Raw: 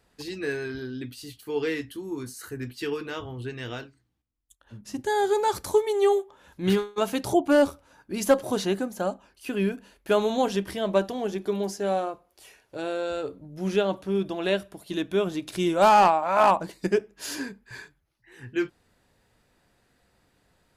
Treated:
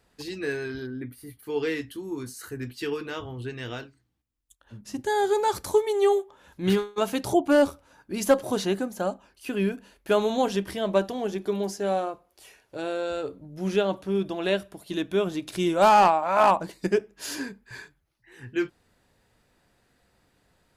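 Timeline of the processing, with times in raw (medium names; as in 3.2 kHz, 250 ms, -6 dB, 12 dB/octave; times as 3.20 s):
0.87–1.43 s: time-frequency box 2.4–8.7 kHz -16 dB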